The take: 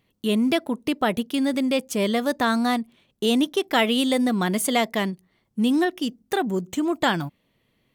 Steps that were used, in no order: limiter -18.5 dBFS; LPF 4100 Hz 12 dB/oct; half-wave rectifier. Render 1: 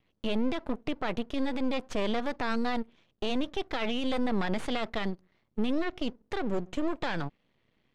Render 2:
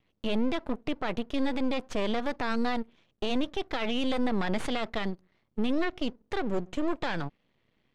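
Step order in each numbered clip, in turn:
limiter > half-wave rectifier > LPF; half-wave rectifier > LPF > limiter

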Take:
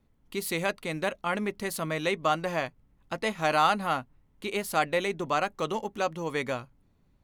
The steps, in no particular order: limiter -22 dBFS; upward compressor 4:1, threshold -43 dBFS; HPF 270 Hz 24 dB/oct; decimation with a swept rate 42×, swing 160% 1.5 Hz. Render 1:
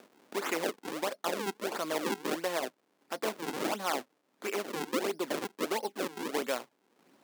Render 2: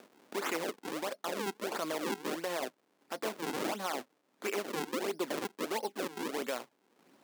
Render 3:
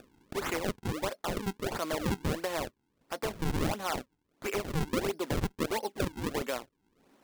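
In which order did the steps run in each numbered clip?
upward compressor > decimation with a swept rate > limiter > HPF; upward compressor > decimation with a swept rate > HPF > limiter; upward compressor > HPF > decimation with a swept rate > limiter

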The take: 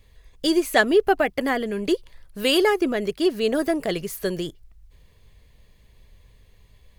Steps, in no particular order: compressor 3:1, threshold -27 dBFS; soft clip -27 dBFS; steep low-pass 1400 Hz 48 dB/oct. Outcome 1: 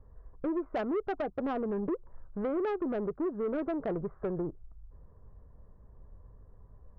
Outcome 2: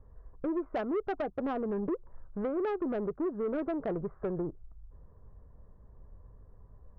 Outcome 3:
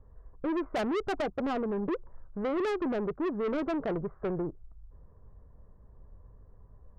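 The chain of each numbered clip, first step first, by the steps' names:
steep low-pass > compressor > soft clip; compressor > steep low-pass > soft clip; steep low-pass > soft clip > compressor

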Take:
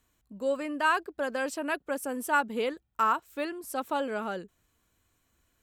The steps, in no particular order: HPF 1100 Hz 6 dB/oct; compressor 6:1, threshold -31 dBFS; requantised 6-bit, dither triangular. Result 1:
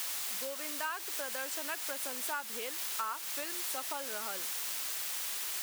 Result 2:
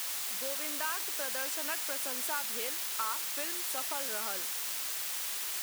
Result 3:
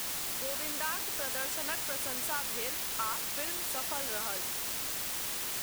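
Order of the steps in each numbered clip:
requantised > compressor > HPF; compressor > requantised > HPF; compressor > HPF > requantised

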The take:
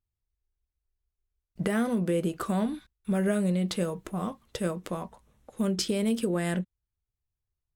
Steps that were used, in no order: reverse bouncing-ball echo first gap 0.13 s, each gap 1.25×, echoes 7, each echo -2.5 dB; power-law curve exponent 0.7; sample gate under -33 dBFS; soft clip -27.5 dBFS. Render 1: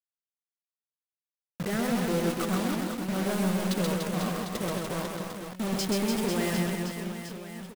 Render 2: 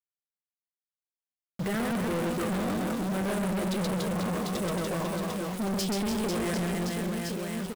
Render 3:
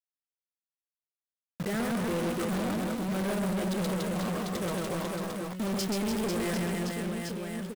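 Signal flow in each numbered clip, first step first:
sample gate > power-law curve > soft clip > reverse bouncing-ball echo; reverse bouncing-ball echo > power-law curve > sample gate > soft clip; sample gate > reverse bouncing-ball echo > soft clip > power-law curve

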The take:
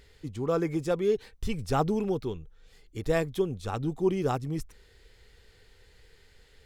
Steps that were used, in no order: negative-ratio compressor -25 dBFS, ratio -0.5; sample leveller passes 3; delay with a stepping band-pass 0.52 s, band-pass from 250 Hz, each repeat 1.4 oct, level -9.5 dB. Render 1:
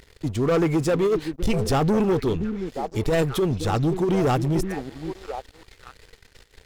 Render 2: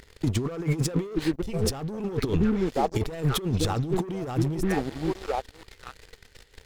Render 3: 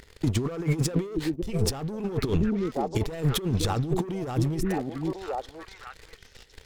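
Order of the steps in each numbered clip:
delay with a stepping band-pass > negative-ratio compressor > sample leveller; delay with a stepping band-pass > sample leveller > negative-ratio compressor; sample leveller > delay with a stepping band-pass > negative-ratio compressor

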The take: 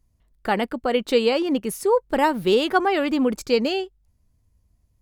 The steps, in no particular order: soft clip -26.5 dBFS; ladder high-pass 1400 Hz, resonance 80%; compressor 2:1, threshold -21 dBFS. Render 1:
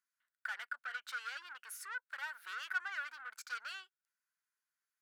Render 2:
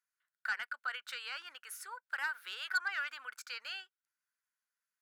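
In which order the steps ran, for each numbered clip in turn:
compressor > soft clip > ladder high-pass; compressor > ladder high-pass > soft clip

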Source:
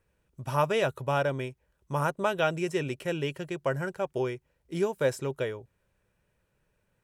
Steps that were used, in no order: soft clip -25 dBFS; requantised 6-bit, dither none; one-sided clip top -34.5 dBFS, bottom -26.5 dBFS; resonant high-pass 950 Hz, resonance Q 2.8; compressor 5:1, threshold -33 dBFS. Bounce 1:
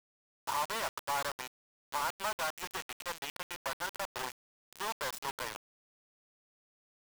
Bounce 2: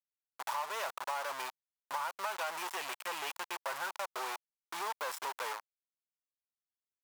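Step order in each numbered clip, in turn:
one-sided clip > compressor > soft clip > resonant high-pass > requantised; soft clip > requantised > one-sided clip > resonant high-pass > compressor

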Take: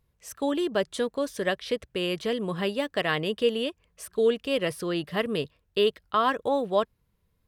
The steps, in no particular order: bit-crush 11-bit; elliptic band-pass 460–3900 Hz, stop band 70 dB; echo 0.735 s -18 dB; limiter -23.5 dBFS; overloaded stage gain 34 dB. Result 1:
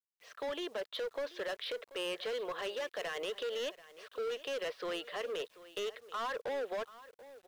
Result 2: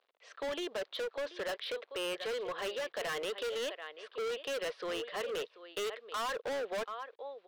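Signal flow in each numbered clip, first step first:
limiter > elliptic band-pass > overloaded stage > echo > bit-crush; echo > bit-crush > elliptic band-pass > overloaded stage > limiter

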